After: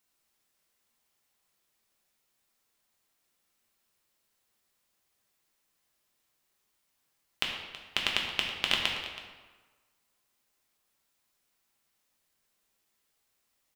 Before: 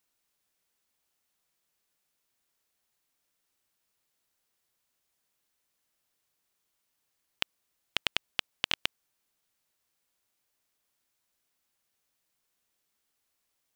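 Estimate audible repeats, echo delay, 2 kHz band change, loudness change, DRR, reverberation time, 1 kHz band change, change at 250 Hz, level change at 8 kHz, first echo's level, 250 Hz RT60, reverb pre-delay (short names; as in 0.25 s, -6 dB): 1, 0.325 s, +3.5 dB, +2.5 dB, -1.0 dB, 1.4 s, +4.0 dB, +4.5 dB, +2.5 dB, -15.5 dB, 1.4 s, 3 ms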